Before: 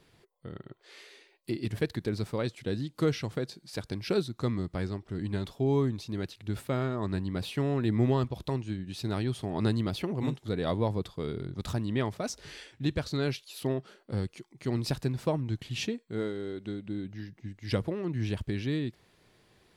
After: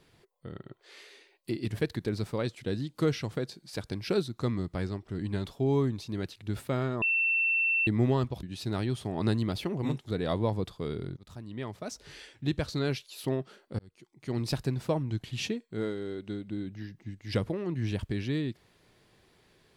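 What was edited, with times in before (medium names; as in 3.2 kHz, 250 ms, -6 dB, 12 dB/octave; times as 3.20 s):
7.02–7.87 s: bleep 2.69 kHz -23.5 dBFS
8.43–8.81 s: delete
11.55–12.84 s: fade in, from -21.5 dB
14.17–14.84 s: fade in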